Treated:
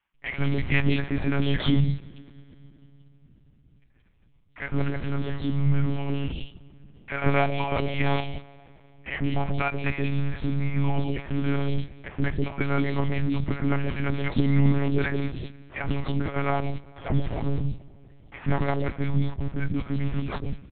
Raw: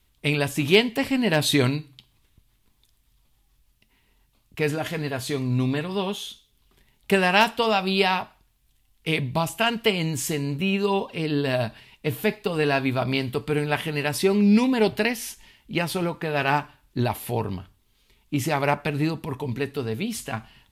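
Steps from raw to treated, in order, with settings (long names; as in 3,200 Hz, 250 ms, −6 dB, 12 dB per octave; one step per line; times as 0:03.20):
formants moved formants −3 semitones
in parallel at −6.5 dB: comparator with hysteresis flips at −30 dBFS
on the sum: low-shelf EQ 160 Hz +9.5 dB
three-band delay without the direct sound mids, lows, highs 140/180 ms, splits 520/2,900 Hz
on a send at −21 dB: convolution reverb RT60 3.8 s, pre-delay 17 ms
on the sum: one-pitch LPC vocoder at 8 kHz 140 Hz
level −4.5 dB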